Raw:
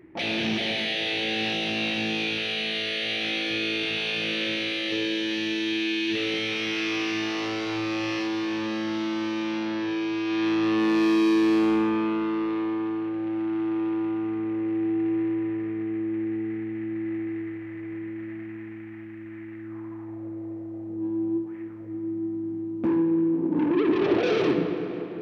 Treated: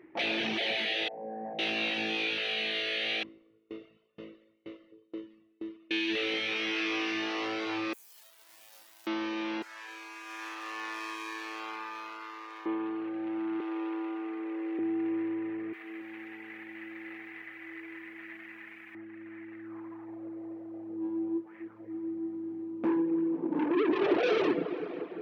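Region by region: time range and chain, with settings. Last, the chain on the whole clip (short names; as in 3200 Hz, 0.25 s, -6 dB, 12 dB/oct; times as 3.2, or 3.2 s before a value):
1.08–1.59 steep low-pass 1500 Hz 48 dB/oct + fixed phaser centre 360 Hz, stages 6
3.23–5.91 CVSD 32 kbps + running mean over 54 samples + dB-ramp tremolo decaying 2.1 Hz, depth 26 dB
7.93–9.07 infinite clipping + differentiator + tube stage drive 38 dB, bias 0.35
9.62–12.66 median filter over 15 samples + HPF 1100 Hz
13.6–14.79 HPF 310 Hz 24 dB/oct + high shelf 4500 Hz +6.5 dB
15.73–18.95 tilt +4.5 dB/oct + echo 0.284 s -7 dB
whole clip: tone controls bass -12 dB, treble -7 dB; reverb removal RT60 0.67 s; low shelf 92 Hz -6.5 dB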